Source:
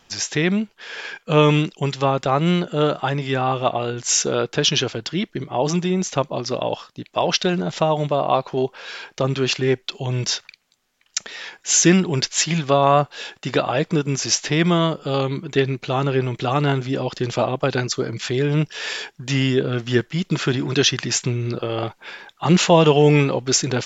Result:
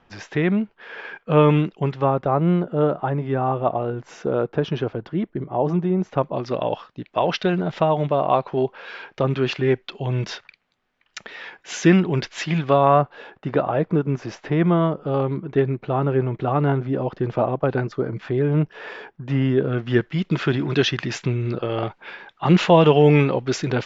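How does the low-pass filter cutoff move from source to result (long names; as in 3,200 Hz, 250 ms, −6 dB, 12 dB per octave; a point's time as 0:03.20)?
0:01.81 1,800 Hz
0:02.32 1,100 Hz
0:06.01 1,100 Hz
0:06.47 2,400 Hz
0:12.74 2,400 Hz
0:13.25 1,300 Hz
0:19.38 1,300 Hz
0:20.15 2,800 Hz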